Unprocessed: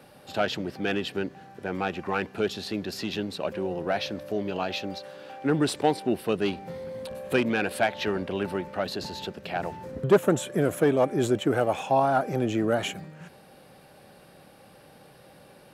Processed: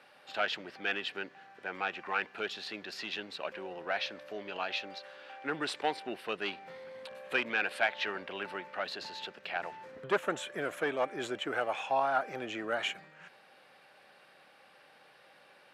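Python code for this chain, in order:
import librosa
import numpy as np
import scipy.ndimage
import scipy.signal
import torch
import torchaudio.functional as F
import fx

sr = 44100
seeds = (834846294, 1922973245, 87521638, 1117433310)

y = fx.bandpass_q(x, sr, hz=2000.0, q=0.87)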